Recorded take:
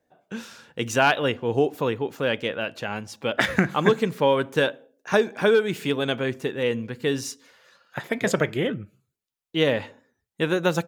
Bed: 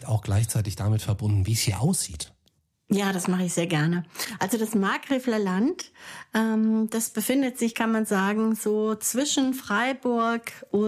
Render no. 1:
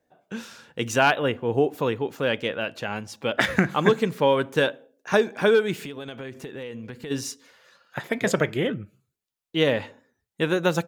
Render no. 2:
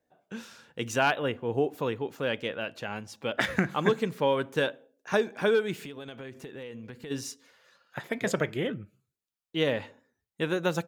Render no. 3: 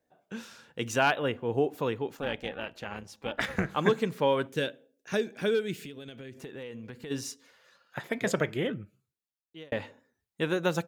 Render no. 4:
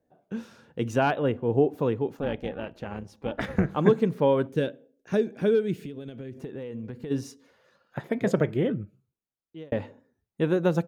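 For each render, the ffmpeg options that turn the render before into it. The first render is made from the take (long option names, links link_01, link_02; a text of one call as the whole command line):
ffmpeg -i in.wav -filter_complex "[0:a]asettb=1/sr,asplit=3[link_01][link_02][link_03];[link_01]atrim=end=1.104[link_04];[link_02]atrim=start=1.1:end=1.72,asetpts=PTS-STARTPTS,afade=type=in:duration=0.004:curve=qsin,afade=type=out:start_time=0.616:duration=0.004:curve=qsin,equalizer=frequency=5200:width_type=o:width=1.2:gain=-9.5[link_05];[link_03]atrim=start=1.716[link_06];[link_04][link_05]acrossfade=duration=0.004:curve1=hsin:curve2=qsin[link_07];[link_07][link_06]acrossfade=duration=0.004:curve1=qsin:curve2=hsin,asplit=3[link_08][link_09][link_10];[link_08]afade=type=out:start_time=5.75:duration=0.02[link_11];[link_09]acompressor=threshold=-32dB:ratio=10:attack=3.2:release=140:knee=1:detection=peak,afade=type=in:start_time=5.75:duration=0.02,afade=type=out:start_time=7.1:duration=0.02[link_12];[link_10]afade=type=in:start_time=7.1:duration=0.02[link_13];[link_11][link_12][link_13]amix=inputs=3:normalize=0" out.wav
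ffmpeg -i in.wav -af "volume=-5.5dB" out.wav
ffmpeg -i in.wav -filter_complex "[0:a]asettb=1/sr,asplit=3[link_01][link_02][link_03];[link_01]atrim=end=2.174[link_04];[link_02]atrim=start=2.17:end=3.77,asetpts=PTS-STARTPTS,afade=type=in:duration=0.004:curve=qsin,afade=type=out:start_time=1.596:duration=0.004:curve=qsin,tremolo=f=290:d=0.75[link_05];[link_03]atrim=start=3.766[link_06];[link_04][link_05]acrossfade=duration=0.004:curve1=hsin:curve2=qsin[link_07];[link_07][link_06]acrossfade=duration=0.004:curve1=qsin:curve2=hsin,asettb=1/sr,asplit=3[link_08][link_09][link_10];[link_08]atrim=end=4.474[link_11];[link_09]atrim=start=4.47:end=6.38,asetpts=PTS-STARTPTS,afade=type=in:duration=0.004:curve=qsin,afade=type=out:start_time=1.906:duration=0.004:curve=qsin,equalizer=frequency=960:width=1.1:gain=-12[link_12];[link_10]atrim=start=6.376[link_13];[link_11][link_12]acrossfade=duration=0.004:curve1=hsin:curve2=qsin[link_14];[link_14][link_13]acrossfade=duration=0.004:curve1=qsin:curve2=hsin,asplit=2[link_15][link_16];[link_15]atrim=end=9.72,asetpts=PTS-STARTPTS,afade=type=out:start_time=8.8:duration=0.92[link_17];[link_16]atrim=start=9.72,asetpts=PTS-STARTPTS,afade=type=in:duration=0.004:curve=hsin[link_18];[link_17][link_18]concat=n=2:v=0:a=1" out.wav
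ffmpeg -i in.wav -af "tiltshelf=frequency=970:gain=7.5,bandreject=frequency=7500:width=16" out.wav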